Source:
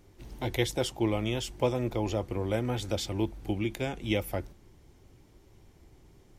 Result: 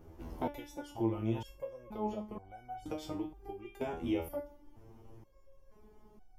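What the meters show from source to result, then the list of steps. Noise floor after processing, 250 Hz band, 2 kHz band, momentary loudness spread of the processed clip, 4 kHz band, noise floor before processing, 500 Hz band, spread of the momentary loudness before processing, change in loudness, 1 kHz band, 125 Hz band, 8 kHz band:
-61 dBFS, -5.5 dB, -14.0 dB, 15 LU, -17.5 dB, -59 dBFS, -8.5 dB, 7 LU, -8.0 dB, -4.0 dB, -10.5 dB, -18.0 dB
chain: graphic EQ 125/1000/2000/4000/8000 Hz -5/+3/-8/-10/-11 dB; in parallel at +1 dB: peak limiter -23 dBFS, peak gain reduction 10 dB; on the sum: treble shelf 9.9 kHz -6.5 dB; band-stop 3.9 kHz, Q 14; compression, threshold -30 dBFS, peak gain reduction 11.5 dB; resonator arpeggio 2.1 Hz 82–750 Hz; trim +8 dB

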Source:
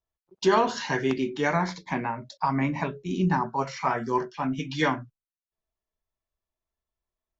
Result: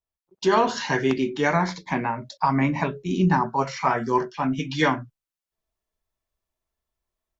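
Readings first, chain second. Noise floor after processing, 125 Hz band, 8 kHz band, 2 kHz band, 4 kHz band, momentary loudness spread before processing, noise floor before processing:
under -85 dBFS, +4.0 dB, no reading, +3.5 dB, +3.0 dB, 7 LU, under -85 dBFS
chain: level rider gain up to 8.5 dB; trim -4 dB

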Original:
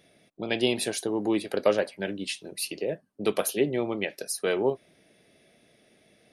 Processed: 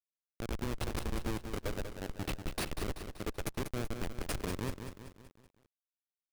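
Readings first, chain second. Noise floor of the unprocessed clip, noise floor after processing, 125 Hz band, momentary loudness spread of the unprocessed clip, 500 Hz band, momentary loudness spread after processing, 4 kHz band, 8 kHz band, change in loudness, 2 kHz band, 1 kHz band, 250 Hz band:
-65 dBFS, under -85 dBFS, +1.5 dB, 8 LU, -15.5 dB, 6 LU, -11.5 dB, -11.5 dB, -11.0 dB, -10.0 dB, -7.0 dB, -10.5 dB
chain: Chebyshev shaper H 4 -33 dB, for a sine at -9 dBFS; compression 6:1, threshold -35 dBFS, peak gain reduction 17.5 dB; Schmitt trigger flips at -32.5 dBFS; bit-crushed delay 191 ms, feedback 55%, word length 11-bit, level -7.5 dB; trim +7 dB

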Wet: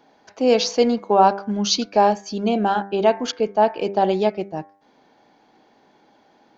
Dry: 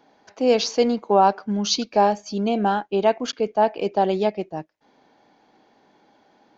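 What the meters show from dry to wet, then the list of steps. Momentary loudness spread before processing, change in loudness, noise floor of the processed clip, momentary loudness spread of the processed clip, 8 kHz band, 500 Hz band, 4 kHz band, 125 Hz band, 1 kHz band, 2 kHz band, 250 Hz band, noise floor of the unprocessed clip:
7 LU, +1.5 dB, -58 dBFS, 7 LU, no reading, +1.5 dB, +2.0 dB, +1.0 dB, +1.5 dB, +2.0 dB, +1.5 dB, -61 dBFS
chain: de-hum 99.07 Hz, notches 23; trim +2 dB

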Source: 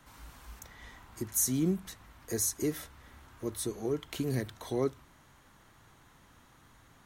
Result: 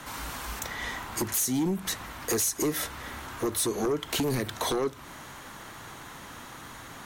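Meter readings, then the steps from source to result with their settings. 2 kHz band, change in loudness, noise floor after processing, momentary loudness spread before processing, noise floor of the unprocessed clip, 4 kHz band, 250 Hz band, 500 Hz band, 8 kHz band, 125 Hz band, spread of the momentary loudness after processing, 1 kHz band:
+13.0 dB, +3.5 dB, -45 dBFS, 21 LU, -61 dBFS, +11.0 dB, +3.5 dB, +4.5 dB, +4.5 dB, +1.0 dB, 17 LU, +13.5 dB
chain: bass shelf 140 Hz -11 dB; compression 12:1, threshold -38 dBFS, peak gain reduction 14 dB; sine folder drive 14 dB, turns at -22.5 dBFS

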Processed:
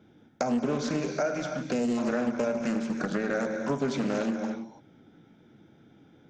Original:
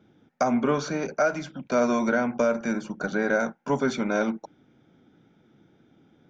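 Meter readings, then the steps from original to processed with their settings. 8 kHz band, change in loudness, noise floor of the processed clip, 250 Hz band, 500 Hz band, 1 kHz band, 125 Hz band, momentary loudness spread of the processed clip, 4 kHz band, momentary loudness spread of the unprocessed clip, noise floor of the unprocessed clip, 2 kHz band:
no reading, -3.5 dB, -59 dBFS, -1.5 dB, -4.5 dB, -6.5 dB, -0.5 dB, 5 LU, -1.0 dB, 7 LU, -63 dBFS, -7.0 dB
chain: band-stop 1.2 kHz, Q 18; dynamic bell 1.2 kHz, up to -6 dB, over -36 dBFS, Q 0.78; gated-style reverb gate 360 ms flat, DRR 5.5 dB; time-frequency box 1.72–1.98 s, 540–1900 Hz -11 dB; compression 2.5:1, threshold -28 dBFS, peak gain reduction 7 dB; loudspeaker Doppler distortion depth 0.29 ms; trim +1.5 dB

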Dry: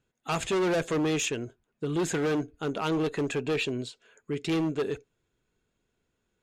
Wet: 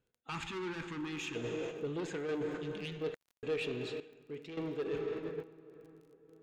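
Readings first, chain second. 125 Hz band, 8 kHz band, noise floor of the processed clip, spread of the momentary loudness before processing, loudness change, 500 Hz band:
-10.5 dB, -17.0 dB, -84 dBFS, 10 LU, -10.0 dB, -7.5 dB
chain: spectral replace 2.62–2.99 s, 230–1700 Hz before; on a send: filtered feedback delay 441 ms, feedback 56%, low-pass 1.7 kHz, level -19 dB; on the sum: dynamic bell 2.3 kHz, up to +4 dB, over -43 dBFS, Q 0.98; plate-style reverb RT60 3.4 s, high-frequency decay 0.6×, DRR 7.5 dB; gate -41 dBFS, range -6 dB; random-step tremolo, depth 100%; low-pass 4.9 kHz 12 dB/octave; reverse; compression 5:1, threshold -40 dBFS, peak gain reduction 14 dB; reverse; saturation -35.5 dBFS, distortion -20 dB; peaking EQ 480 Hz +7.5 dB 0.36 oct; time-frequency box 0.30–1.35 s, 380–780 Hz -21 dB; crackle 24 per s -57 dBFS; trim +3.5 dB

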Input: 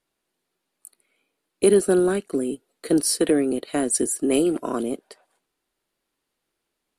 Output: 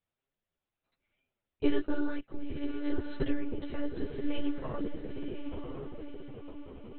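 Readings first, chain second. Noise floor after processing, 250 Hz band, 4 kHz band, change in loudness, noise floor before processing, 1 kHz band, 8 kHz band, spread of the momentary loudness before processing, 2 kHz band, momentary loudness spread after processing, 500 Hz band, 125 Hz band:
under -85 dBFS, -10.5 dB, -14.5 dB, -15.0 dB, -80 dBFS, -12.5 dB, under -40 dB, 11 LU, -9.0 dB, 14 LU, -16.5 dB, -7.0 dB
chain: echo that smears into a reverb 1002 ms, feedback 50%, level -6 dB; monotone LPC vocoder at 8 kHz 290 Hz; chorus voices 2, 0.91 Hz, delay 11 ms, depth 3.6 ms; trim -7.5 dB

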